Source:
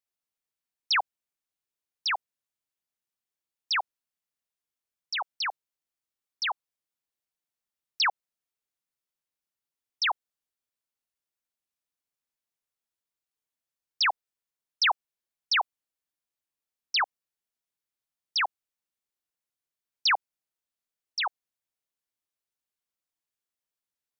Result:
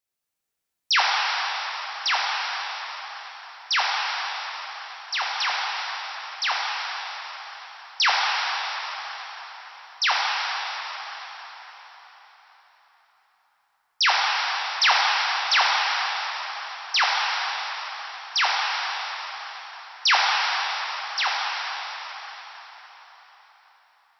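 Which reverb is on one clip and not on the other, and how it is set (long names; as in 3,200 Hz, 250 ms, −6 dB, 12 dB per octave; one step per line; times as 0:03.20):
dense smooth reverb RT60 4.9 s, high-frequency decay 0.8×, DRR −4.5 dB
level +3 dB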